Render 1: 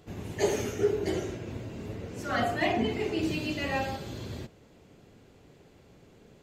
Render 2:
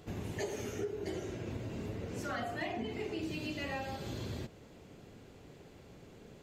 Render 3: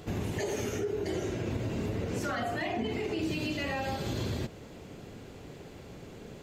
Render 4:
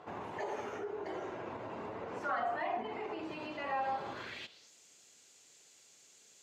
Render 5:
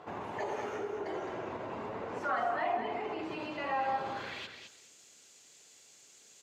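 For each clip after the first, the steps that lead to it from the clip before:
compressor 5:1, threshold -38 dBFS, peak gain reduction 16 dB; gain +1.5 dB
limiter -32 dBFS, peak gain reduction 6 dB; gain +8 dB
band-pass sweep 980 Hz -> 7100 Hz, 4.09–4.72; gain +5.5 dB
feedback echo 0.212 s, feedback 16%, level -8 dB; gain +2.5 dB

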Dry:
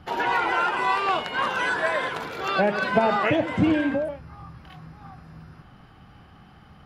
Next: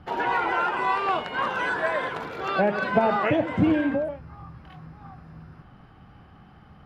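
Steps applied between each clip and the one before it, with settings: high shelf 3100 Hz -10 dB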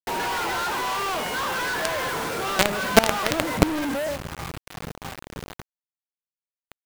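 companded quantiser 2-bit; gain -1 dB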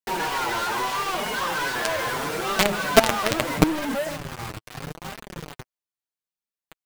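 flange 0.77 Hz, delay 4.4 ms, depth 5.1 ms, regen +12%; gain +3.5 dB

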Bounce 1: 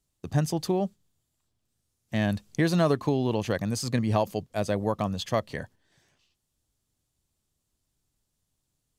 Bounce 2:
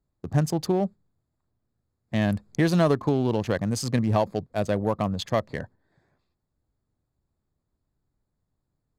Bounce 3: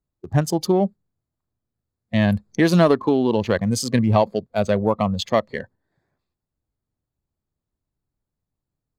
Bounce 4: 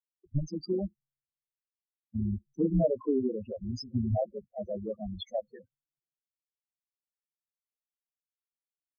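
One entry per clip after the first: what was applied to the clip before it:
Wiener smoothing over 15 samples; in parallel at -8.5 dB: one-sided clip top -21 dBFS
spectral noise reduction 11 dB; gain +6 dB
AM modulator 140 Hz, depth 95%; loudest bins only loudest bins 4; three-band expander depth 70%; gain -6 dB

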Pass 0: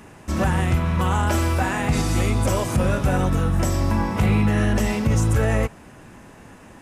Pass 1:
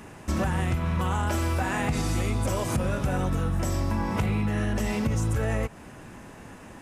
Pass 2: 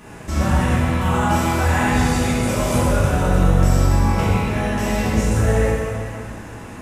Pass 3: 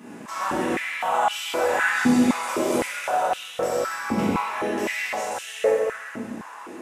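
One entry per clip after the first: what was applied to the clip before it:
compressor 5:1, threshold -23 dBFS, peak gain reduction 8.5 dB
plate-style reverb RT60 2.3 s, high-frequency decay 0.85×, DRR -8.5 dB
stepped high-pass 3.9 Hz 240–3000 Hz; gain -5.5 dB

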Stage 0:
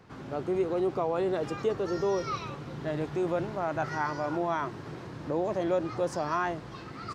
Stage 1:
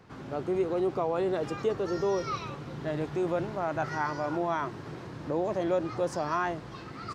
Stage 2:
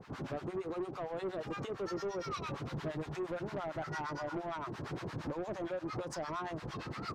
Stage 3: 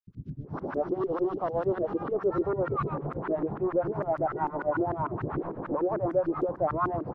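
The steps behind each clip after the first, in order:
nothing audible
compressor 6:1, threshold -34 dBFS, peak gain reduction 11 dB; harmonic tremolo 8.7 Hz, depth 100%, crossover 850 Hz; soft clip -39 dBFS, distortion -12 dB; gain +6.5 dB
painted sound noise, 0.48–1.71, 2700–6100 Hz -52 dBFS; LFO low-pass saw up 6.7 Hz 290–1500 Hz; three bands offset in time highs, lows, mids 70/440 ms, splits 210/4300 Hz; gain +7.5 dB

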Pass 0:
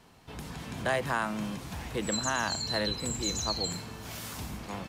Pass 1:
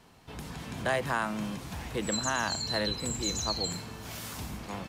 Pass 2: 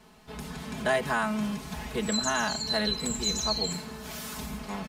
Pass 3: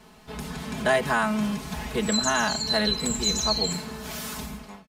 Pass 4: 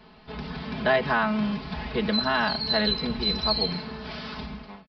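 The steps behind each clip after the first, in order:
nothing audible
comb 4.7 ms, depth 86%
ending faded out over 0.58 s; gain +4 dB
downsampling 11025 Hz

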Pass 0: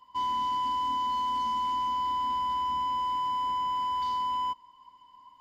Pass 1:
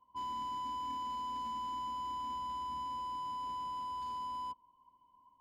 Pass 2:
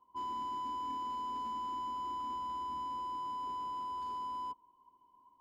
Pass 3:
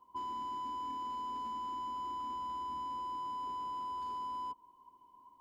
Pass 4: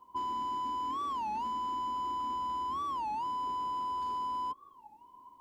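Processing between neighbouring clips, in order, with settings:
Wiener smoothing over 25 samples; gain -6 dB
small resonant body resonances 380/810/1200 Hz, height 12 dB, ringing for 20 ms; gain -3.5 dB
compressor, threshold -43 dBFS, peak gain reduction 6.5 dB; gain +4.5 dB
record warp 33 1/3 rpm, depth 250 cents; gain +5 dB

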